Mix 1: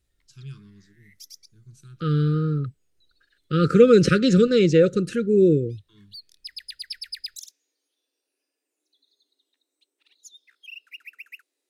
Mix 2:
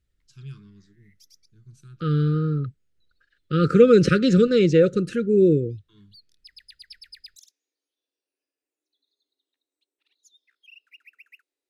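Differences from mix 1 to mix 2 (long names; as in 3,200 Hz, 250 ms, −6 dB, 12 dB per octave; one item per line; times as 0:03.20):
background −7.5 dB
master: add high-shelf EQ 5,500 Hz −6.5 dB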